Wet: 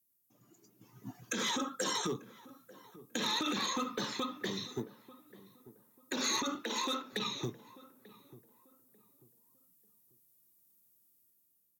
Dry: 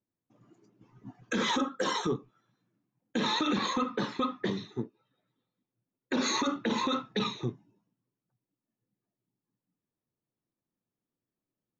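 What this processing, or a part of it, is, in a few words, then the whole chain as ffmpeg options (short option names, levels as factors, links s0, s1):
FM broadcast chain: -filter_complex "[0:a]highpass=63,dynaudnorm=f=250:g=7:m=2.51,acrossover=split=390|3700[s0][s1][s2];[s0]acompressor=threshold=0.0398:ratio=4[s3];[s1]acompressor=threshold=0.0447:ratio=4[s4];[s2]acompressor=threshold=0.00708:ratio=4[s5];[s3][s4][s5]amix=inputs=3:normalize=0,aemphasis=mode=production:type=50fm,alimiter=limit=0.1:level=0:latency=1:release=430,asoftclip=type=hard:threshold=0.075,lowpass=f=15000:w=0.5412,lowpass=f=15000:w=1.3066,aemphasis=mode=production:type=50fm,asettb=1/sr,asplit=3[s6][s7][s8];[s6]atrim=end=6.554[s9];[s7]atrim=start=6.55:end=7.13,asetpts=PTS-STARTPTS,afade=t=in:d=0.004:c=qsin,afade=t=out:st=0.576:d=0.004:c=qsin,highpass=f=250:w=0.5412,highpass=f=250:w=1.3066[s10];[s8]atrim=start=7.126[s11];[s9][s10]acrossfade=d=0.004:c1=hsin:c2=qsin[s12];[s12][s11]acrossfade=d=0.004:c1=qsin:c2=hsin,asplit=2[s13][s14];[s14]adelay=891,lowpass=f=1100:p=1,volume=0.133,asplit=2[s15][s16];[s16]adelay=891,lowpass=f=1100:p=1,volume=0.32,asplit=2[s17][s18];[s18]adelay=891,lowpass=f=1100:p=1,volume=0.32[s19];[s13][s15][s17][s19]amix=inputs=4:normalize=0,volume=0.562"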